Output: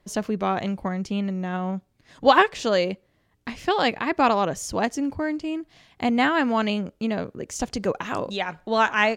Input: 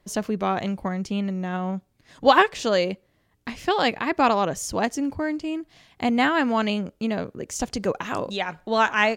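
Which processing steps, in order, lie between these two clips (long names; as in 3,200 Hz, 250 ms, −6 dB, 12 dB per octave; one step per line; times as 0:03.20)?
high-shelf EQ 8,900 Hz −5 dB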